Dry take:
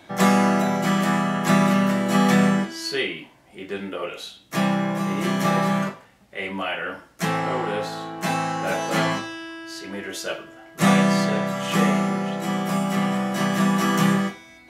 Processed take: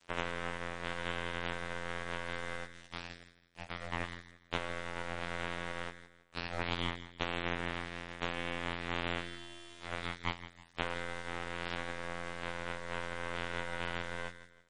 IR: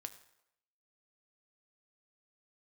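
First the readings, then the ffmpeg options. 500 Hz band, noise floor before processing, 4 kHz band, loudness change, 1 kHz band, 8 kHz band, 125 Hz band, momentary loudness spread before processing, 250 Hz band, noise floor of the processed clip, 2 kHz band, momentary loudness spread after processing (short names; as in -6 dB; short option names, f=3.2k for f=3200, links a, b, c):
-16.0 dB, -51 dBFS, -11.5 dB, -17.0 dB, -17.0 dB, -22.0 dB, -20.0 dB, 14 LU, -24.5 dB, -64 dBFS, -11.0 dB, 9 LU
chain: -filter_complex "[0:a]highpass=60,alimiter=limit=-17dB:level=0:latency=1:release=200,acompressor=threshold=-30dB:ratio=10,afreqshift=61,afftfilt=real='hypot(re,im)*cos(PI*b)':imag='0':win_size=2048:overlap=0.75,lowpass=f=1.7k:t=q:w=2.1,aeval=exprs='abs(val(0))':c=same,aeval=exprs='0.158*(cos(1*acos(clip(val(0)/0.158,-1,1)))-cos(1*PI/2))+0.0251*(cos(2*acos(clip(val(0)/0.158,-1,1)))-cos(2*PI/2))+0.0251*(cos(3*acos(clip(val(0)/0.158,-1,1)))-cos(3*PI/2))+0.00158*(cos(4*acos(clip(val(0)/0.158,-1,1)))-cos(4*PI/2))+0.01*(cos(7*acos(clip(val(0)/0.158,-1,1)))-cos(7*PI/2))':c=same,acrusher=bits=8:mix=0:aa=0.000001,asplit=2[a][b];[b]aecho=0:1:162|324|486:0.2|0.0718|0.0259[c];[a][c]amix=inputs=2:normalize=0,volume=2dB" -ar 22050 -c:a libmp3lame -b:a 40k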